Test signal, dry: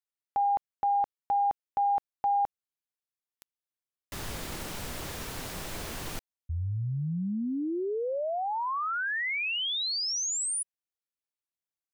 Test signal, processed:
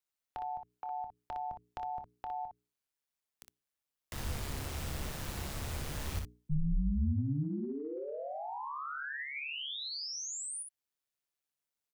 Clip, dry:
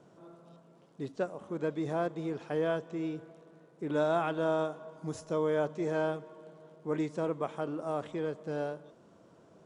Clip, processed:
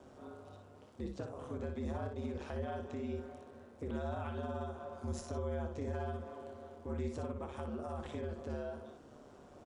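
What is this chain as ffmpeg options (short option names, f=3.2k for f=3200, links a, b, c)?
-filter_complex "[0:a]aeval=exprs='val(0)*sin(2*PI*71*n/s)':c=same,bandreject=f=60:t=h:w=6,bandreject=f=120:t=h:w=6,bandreject=f=180:t=h:w=6,bandreject=f=240:t=h:w=6,bandreject=f=300:t=h:w=6,bandreject=f=360:t=h:w=6,bandreject=f=420:t=h:w=6,acrossover=split=160[a][b];[b]acompressor=threshold=-44dB:ratio=6:attack=1.6:release=213:knee=2.83:detection=peak[c];[a][c]amix=inputs=2:normalize=0,asplit=2[d][e];[e]aecho=0:1:26|60:0.224|0.501[f];[d][f]amix=inputs=2:normalize=0,volume=5dB"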